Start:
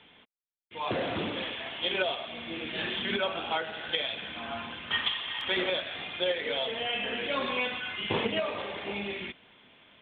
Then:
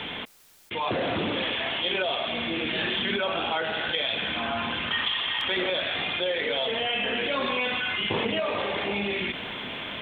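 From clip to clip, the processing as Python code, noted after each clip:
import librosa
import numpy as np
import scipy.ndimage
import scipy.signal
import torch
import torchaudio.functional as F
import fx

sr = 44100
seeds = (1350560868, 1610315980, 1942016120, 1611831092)

y = fx.env_flatten(x, sr, amount_pct=70)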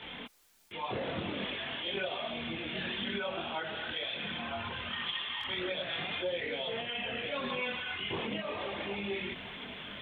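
y = fx.dynamic_eq(x, sr, hz=120.0, q=1.2, threshold_db=-48.0, ratio=4.0, max_db=6)
y = fx.chorus_voices(y, sr, voices=4, hz=0.61, base_ms=23, depth_ms=3.0, mix_pct=60)
y = F.gain(torch.from_numpy(y), -6.5).numpy()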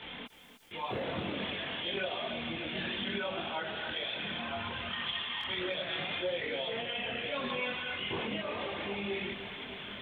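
y = fx.echo_feedback(x, sr, ms=302, feedback_pct=56, wet_db=-12)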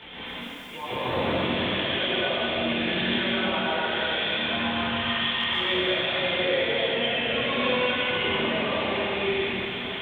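y = fx.rev_plate(x, sr, seeds[0], rt60_s=2.3, hf_ratio=0.95, predelay_ms=105, drr_db=-8.5)
y = F.gain(torch.from_numpy(y), 1.5).numpy()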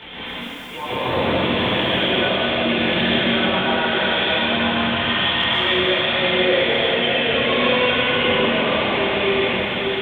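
y = fx.echo_alternate(x, sr, ms=588, hz=1700.0, feedback_pct=67, wet_db=-5.5)
y = F.gain(torch.from_numpy(y), 6.0).numpy()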